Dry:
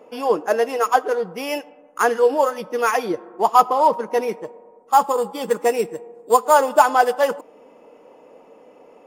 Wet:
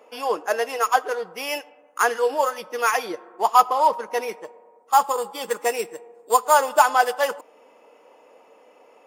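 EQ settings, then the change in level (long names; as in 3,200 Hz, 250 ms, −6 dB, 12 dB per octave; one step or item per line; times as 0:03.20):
high-pass filter 1,100 Hz 6 dB per octave
+2.0 dB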